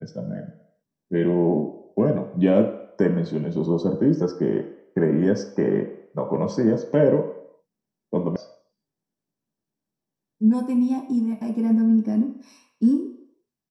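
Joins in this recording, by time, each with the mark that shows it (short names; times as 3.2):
8.36 sound cut off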